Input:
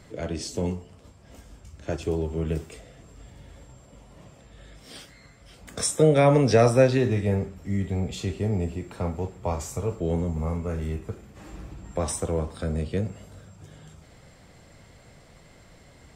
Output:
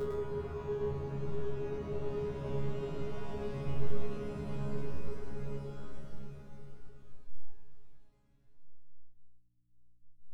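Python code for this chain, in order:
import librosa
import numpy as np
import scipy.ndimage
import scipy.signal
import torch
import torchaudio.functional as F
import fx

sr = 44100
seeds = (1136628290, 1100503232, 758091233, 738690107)

p1 = fx.dereverb_blind(x, sr, rt60_s=1.3)
p2 = scipy.signal.sosfilt(scipy.signal.butter(2, 5400.0, 'lowpass', fs=sr, output='sos'), p1)
p3 = fx.peak_eq(p2, sr, hz=1300.0, db=2.5, octaves=0.67)
p4 = fx.over_compress(p3, sr, threshold_db=-33.0, ratio=-0.5)
p5 = p3 + (p4 * 10.0 ** (0.5 / 20.0))
p6 = fx.backlash(p5, sr, play_db=-18.0)
p7 = fx.paulstretch(p6, sr, seeds[0], factor=21.0, window_s=0.5, from_s=2.24)
p8 = fx.add_hum(p7, sr, base_hz=60, snr_db=29)
p9 = fx.resonator_bank(p8, sr, root=49, chord='fifth', decay_s=0.62)
p10 = fx.stretch_vocoder_free(p9, sr, factor=0.64)
p11 = p10 + fx.echo_single(p10, sr, ms=107, db=-3.0, dry=0)
y = p11 * 10.0 ** (15.0 / 20.0)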